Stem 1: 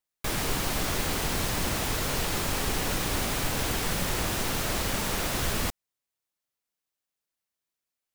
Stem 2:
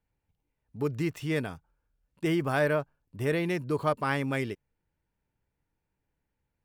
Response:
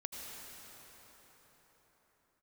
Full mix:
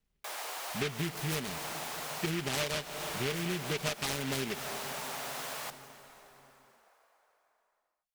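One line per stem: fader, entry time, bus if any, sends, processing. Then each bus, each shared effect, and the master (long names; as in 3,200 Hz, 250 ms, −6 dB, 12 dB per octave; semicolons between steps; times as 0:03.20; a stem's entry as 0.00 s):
−4.5 dB, 0.00 s, send −6 dB, four-pole ladder high-pass 550 Hz, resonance 35%
+1.5 dB, 0.00 s, send −12.5 dB, comb filter 4.9 ms, depth 64%; rotating-speaker cabinet horn 0.65 Hz; short delay modulated by noise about 2,200 Hz, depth 0.26 ms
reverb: on, pre-delay 73 ms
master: downward compressor 12 to 1, threshold −30 dBFS, peak gain reduction 15.5 dB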